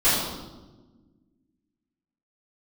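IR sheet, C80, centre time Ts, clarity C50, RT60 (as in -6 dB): 2.5 dB, 78 ms, 0.0 dB, 1.3 s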